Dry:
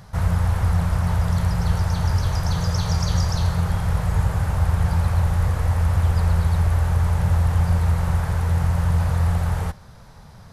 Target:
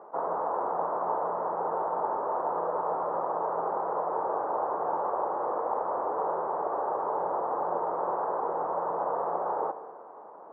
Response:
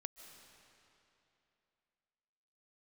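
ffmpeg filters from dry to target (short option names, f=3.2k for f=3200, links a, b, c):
-filter_complex "[0:a]acrusher=bits=7:mix=0:aa=0.000001,asuperpass=centerf=610:order=8:qfactor=0.76,asplit=2[a][b];[1:a]atrim=start_sample=2205,asetrate=83790,aresample=44100,lowpass=3k[c];[b][c]afir=irnorm=-1:irlink=0,volume=10dB[d];[a][d]amix=inputs=2:normalize=0"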